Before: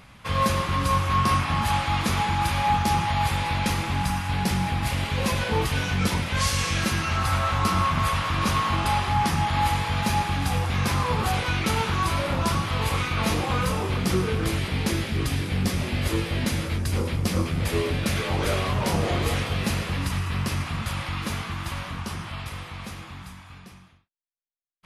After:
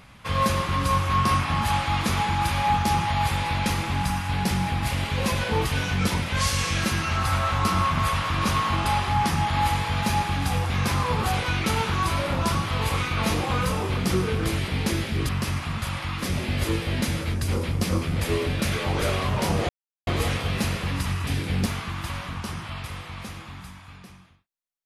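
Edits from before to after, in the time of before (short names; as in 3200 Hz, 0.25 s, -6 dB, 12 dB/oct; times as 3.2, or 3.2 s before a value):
15.29–15.68 swap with 20.33–21.28
19.13 insert silence 0.38 s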